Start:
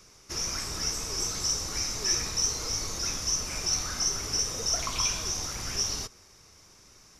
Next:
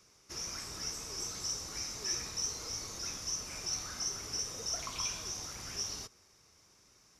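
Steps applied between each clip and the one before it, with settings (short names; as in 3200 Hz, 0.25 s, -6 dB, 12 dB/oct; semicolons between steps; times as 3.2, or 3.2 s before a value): HPF 69 Hz 6 dB/oct; gain -8.5 dB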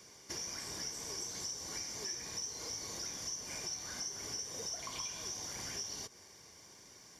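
compressor 6:1, threshold -47 dBFS, peak gain reduction 15.5 dB; notch comb 1300 Hz; gain +8.5 dB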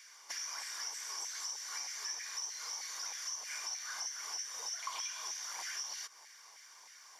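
LFO high-pass saw down 3.2 Hz 830–1900 Hz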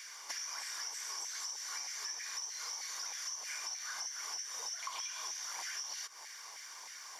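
compressor 2.5:1, threshold -50 dBFS, peak gain reduction 10 dB; gain +7.5 dB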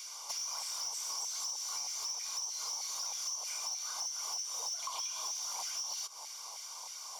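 fixed phaser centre 730 Hz, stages 4; soft clip -36 dBFS, distortion -19 dB; gain +6 dB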